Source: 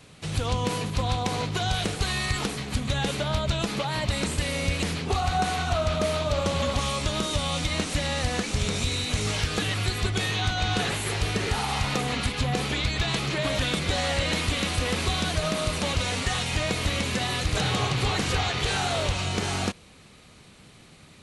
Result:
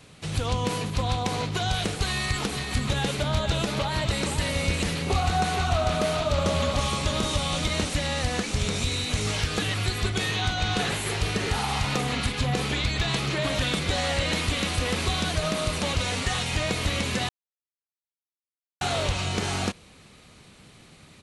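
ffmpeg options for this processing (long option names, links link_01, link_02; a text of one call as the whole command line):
ffmpeg -i in.wav -filter_complex "[0:a]asplit=3[link_01][link_02][link_03];[link_01]afade=type=out:start_time=2.51:duration=0.02[link_04];[link_02]aecho=1:1:471:0.473,afade=type=in:start_time=2.51:duration=0.02,afade=type=out:start_time=7.88:duration=0.02[link_05];[link_03]afade=type=in:start_time=7.88:duration=0.02[link_06];[link_04][link_05][link_06]amix=inputs=3:normalize=0,asettb=1/sr,asplit=3[link_07][link_08][link_09];[link_07]atrim=end=9.964[link_10];[link_08]atrim=start=9.96:end=13.83,asetpts=PTS-STARTPTS,afade=type=in:duration=0.004:curve=qsin,afade=type=out:start_time=3.866:duration=0.004:curve=qsin,asplit=2[link_11][link_12];[link_12]adelay=44,volume=-13dB[link_13];[link_11][link_13]amix=inputs=2:normalize=0,atrim=end_sample=170667[link_14];[link_09]atrim=start=13.826[link_15];[link_10][link_14]acrossfade=duration=0.004:curve1=hsin:curve2=qsin[link_16];[link_16][link_15]acrossfade=duration=0.004:curve1=qsin:curve2=hsin,asplit=3[link_17][link_18][link_19];[link_17]atrim=end=17.29,asetpts=PTS-STARTPTS,afade=type=out:start_time=17.286:duration=0.004:curve=hsin[link_20];[link_18]atrim=start=17.29:end=18.81,asetpts=PTS-STARTPTS,volume=0[link_21];[link_19]atrim=start=18.81,asetpts=PTS-STARTPTS,afade=type=in:duration=0.004:curve=hsin[link_22];[link_20][link_21][link_22]concat=n=3:v=0:a=1" out.wav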